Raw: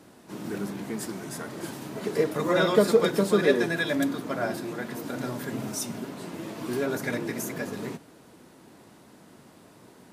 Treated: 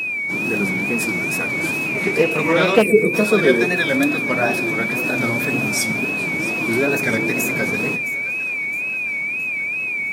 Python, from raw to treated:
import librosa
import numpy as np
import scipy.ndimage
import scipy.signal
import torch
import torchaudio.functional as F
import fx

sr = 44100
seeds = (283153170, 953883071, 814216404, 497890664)

p1 = fx.spec_erase(x, sr, start_s=2.83, length_s=0.3, low_hz=550.0, high_hz=8100.0)
p2 = fx.rider(p1, sr, range_db=4, speed_s=0.5)
p3 = p1 + F.gain(torch.from_numpy(p2), -1.0).numpy()
p4 = p3 + 10.0 ** (-23.0 / 20.0) * np.sin(2.0 * np.pi * 2400.0 * np.arange(len(p3)) / sr)
p5 = fx.wow_flutter(p4, sr, seeds[0], rate_hz=2.1, depth_cents=120.0)
p6 = p5 + fx.echo_split(p5, sr, split_hz=550.0, low_ms=123, high_ms=665, feedback_pct=52, wet_db=-15, dry=0)
p7 = fx.doppler_dist(p6, sr, depth_ms=0.16, at=(1.86, 2.86))
y = F.gain(torch.from_numpy(p7), 2.0).numpy()